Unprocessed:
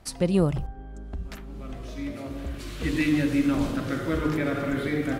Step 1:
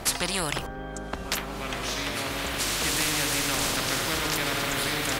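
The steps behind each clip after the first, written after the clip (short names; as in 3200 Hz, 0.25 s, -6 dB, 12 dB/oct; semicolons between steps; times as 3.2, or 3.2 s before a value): spectral compressor 4:1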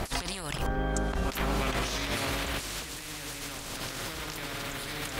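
low shelf 100 Hz +6.5 dB; negative-ratio compressor -32 dBFS, ratio -0.5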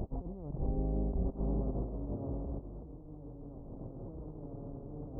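Gaussian blur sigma 15 samples; gain -1.5 dB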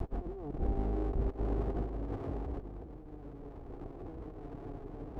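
minimum comb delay 2.6 ms; gain +2 dB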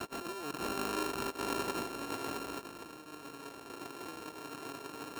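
sample sorter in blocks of 32 samples; HPF 270 Hz 12 dB/oct; gain +3 dB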